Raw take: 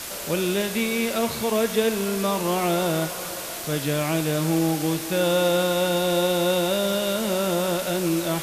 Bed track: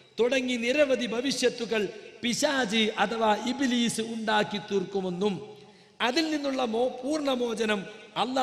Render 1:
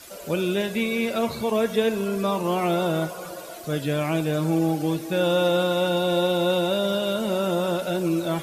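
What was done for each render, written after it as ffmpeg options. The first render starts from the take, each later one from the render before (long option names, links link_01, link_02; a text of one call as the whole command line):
ffmpeg -i in.wav -af "afftdn=noise_reduction=13:noise_floor=-33" out.wav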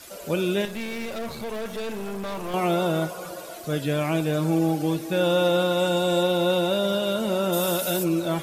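ffmpeg -i in.wav -filter_complex "[0:a]asettb=1/sr,asplit=3[link_01][link_02][link_03];[link_01]atrim=end=0.654[link_04];[link_02]atrim=start=0.65:end=2.54,asetpts=PTS-STARTPTS,afade=type=in:duration=0.004:curve=qsin,afade=type=out:start_time=1.886:duration=0.004:curve=qsin,aeval=exprs='(tanh(28.2*val(0)+0.55)-tanh(0.55))/28.2':channel_layout=same[link_05];[link_03]atrim=start=2.536[link_06];[link_04][link_05]acrossfade=duration=0.004:curve1=hsin:curve2=qsin[link_07];[link_07][link_06]acrossfade=duration=0.004:curve1=qsin:curve2=hsin,asettb=1/sr,asplit=3[link_08][link_09][link_10];[link_08]atrim=end=5.794[link_11];[link_09]atrim=start=5.79:end=6.23,asetpts=PTS-STARTPTS,afade=type=in:duration=0.004:curve=qsin,afade=type=out:start_time=0.436:duration=0.004:curve=qsin,equalizer=frequency=7600:width_type=o:width=0.29:gain=10[link_12];[link_10]atrim=start=6.226[link_13];[link_11][link_12]acrossfade=duration=0.004:curve1=hsin:curve2=qsin[link_14];[link_14][link_13]acrossfade=duration=0.004:curve1=qsin:curve2=hsin,asplit=3[link_15][link_16][link_17];[link_15]afade=type=out:start_time=7.52:duration=0.02[link_18];[link_16]aemphasis=mode=production:type=75fm,afade=type=in:start_time=7.52:duration=0.02,afade=type=out:start_time=8.03:duration=0.02[link_19];[link_17]afade=type=in:start_time=8.03:duration=0.02[link_20];[link_18][link_19][link_20]amix=inputs=3:normalize=0" out.wav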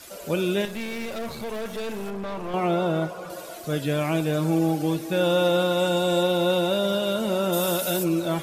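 ffmpeg -i in.wav -filter_complex "[0:a]asettb=1/sr,asplit=3[link_01][link_02][link_03];[link_01]atrim=end=2.104[link_04];[link_02]atrim=start=2.1:end=3.3,asetpts=PTS-STARTPTS,afade=type=in:duration=0.004:curve=qsin,afade=type=out:start_time=1.196:duration=0.004:curve=qsin,lowpass=frequency=2600:poles=1[link_05];[link_03]atrim=start=3.296[link_06];[link_04][link_05]acrossfade=duration=0.004:curve1=hsin:curve2=qsin[link_07];[link_07][link_06]acrossfade=duration=0.004:curve1=qsin:curve2=hsin" out.wav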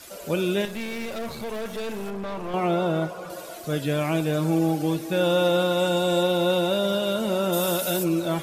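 ffmpeg -i in.wav -af anull out.wav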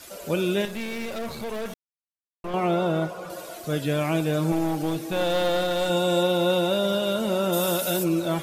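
ffmpeg -i in.wav -filter_complex "[0:a]asettb=1/sr,asplit=3[link_01][link_02][link_03];[link_01]atrim=end=4.524[link_04];[link_02]atrim=start=4.52:end=5.9,asetpts=PTS-STARTPTS,afade=type=in:duration=0.004:curve=qsin,afade=type=out:start_time=1.376:duration=0.004:curve=qsin,aeval=exprs='clip(val(0),-1,0.0531)':channel_layout=same[link_05];[link_03]atrim=start=5.896[link_06];[link_04][link_05]acrossfade=duration=0.004:curve1=hsin:curve2=qsin[link_07];[link_07][link_06]acrossfade=duration=0.004:curve1=qsin:curve2=hsin,asplit=3[link_08][link_09][link_10];[link_08]atrim=end=1.74,asetpts=PTS-STARTPTS,afade=type=out:start_time=1.736:duration=0.004:curve=hsin[link_11];[link_09]atrim=start=1.74:end=2.44,asetpts=PTS-STARTPTS,volume=0[link_12];[link_10]atrim=start=2.44,asetpts=PTS-STARTPTS,afade=type=in:duration=0.004:curve=hsin[link_13];[link_11][link_12][link_13]concat=n=3:v=0:a=1" out.wav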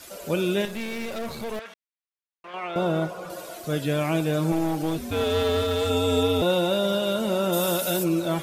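ffmpeg -i in.wav -filter_complex "[0:a]asettb=1/sr,asplit=3[link_01][link_02][link_03];[link_01]atrim=end=1.594[link_04];[link_02]atrim=start=1.59:end=2.76,asetpts=PTS-STARTPTS,afade=type=in:duration=0.004:curve=qsin,afade=type=out:start_time=1.166:duration=0.004:curve=qsin,bandpass=frequency=2100:width_type=q:width=0.89[link_05];[link_03]atrim=start=2.756[link_06];[link_04][link_05]acrossfade=duration=0.004:curve1=hsin:curve2=qsin[link_07];[link_07][link_06]acrossfade=duration=0.004:curve1=qsin:curve2=hsin,asettb=1/sr,asplit=3[link_08][link_09][link_10];[link_08]atrim=end=4.984[link_11];[link_09]atrim=start=4.98:end=6.42,asetpts=PTS-STARTPTS,afade=type=in:duration=0.004:curve=qsin,afade=type=out:start_time=1.436:duration=0.004:curve=qsin,afreqshift=-86[link_12];[link_10]atrim=start=6.416[link_13];[link_11][link_12]acrossfade=duration=0.004:curve1=hsin:curve2=qsin[link_14];[link_14][link_13]acrossfade=duration=0.004:curve1=qsin:curve2=hsin" out.wav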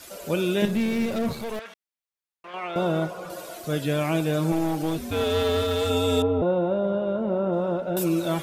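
ffmpeg -i in.wav -filter_complex "[0:a]asettb=1/sr,asplit=3[link_01][link_02][link_03];[link_01]atrim=end=0.624[link_04];[link_02]atrim=start=0.62:end=1.33,asetpts=PTS-STARTPTS,afade=type=in:duration=0.004:curve=qsin,afade=type=out:start_time=0.706:duration=0.004:curve=qsin,equalizer=frequency=150:width_type=o:width=2.6:gain=12[link_05];[link_03]atrim=start=1.326[link_06];[link_04][link_05]acrossfade=duration=0.004:curve1=hsin:curve2=qsin[link_07];[link_07][link_06]acrossfade=duration=0.004:curve1=qsin:curve2=hsin,asettb=1/sr,asplit=3[link_08][link_09][link_10];[link_08]atrim=end=6.224[link_11];[link_09]atrim=start=6.22:end=7.97,asetpts=PTS-STARTPTS,afade=type=in:duration=0.004:curve=qsin,afade=type=out:start_time=1.746:duration=0.004:curve=qsin,lowpass=1000[link_12];[link_10]atrim=start=7.966[link_13];[link_11][link_12]acrossfade=duration=0.004:curve1=hsin:curve2=qsin[link_14];[link_14][link_13]acrossfade=duration=0.004:curve1=qsin:curve2=hsin" out.wav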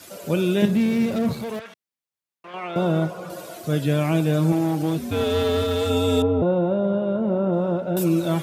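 ffmpeg -i in.wav -af "highpass=frequency=100:width=0.5412,highpass=frequency=100:width=1.3066,lowshelf=frequency=210:gain=10" out.wav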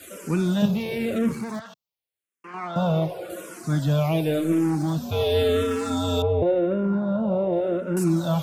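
ffmpeg -i in.wav -filter_complex "[0:a]asplit=2[link_01][link_02];[link_02]asoftclip=type=tanh:threshold=-23.5dB,volume=-9dB[link_03];[link_01][link_03]amix=inputs=2:normalize=0,asplit=2[link_04][link_05];[link_05]afreqshift=-0.91[link_06];[link_04][link_06]amix=inputs=2:normalize=1" out.wav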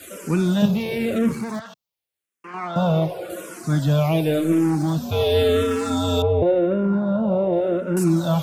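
ffmpeg -i in.wav -af "volume=3dB" out.wav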